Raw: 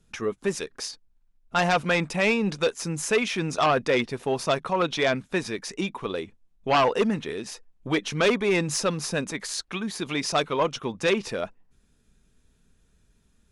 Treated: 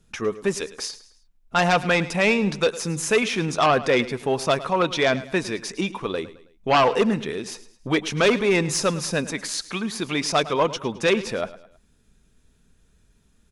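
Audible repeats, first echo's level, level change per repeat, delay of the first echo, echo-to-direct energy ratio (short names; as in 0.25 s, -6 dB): 3, -16.5 dB, -8.0 dB, 0.107 s, -15.5 dB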